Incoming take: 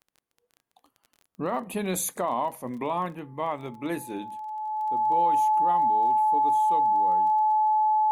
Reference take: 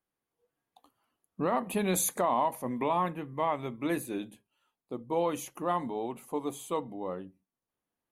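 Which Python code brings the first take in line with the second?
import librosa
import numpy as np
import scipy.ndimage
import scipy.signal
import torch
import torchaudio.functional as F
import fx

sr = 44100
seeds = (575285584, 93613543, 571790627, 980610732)

y = fx.fix_declick_ar(x, sr, threshold=6.5)
y = fx.notch(y, sr, hz=860.0, q=30.0)
y = fx.gain(y, sr, db=fx.steps((0.0, 0.0), (4.47, 4.0)))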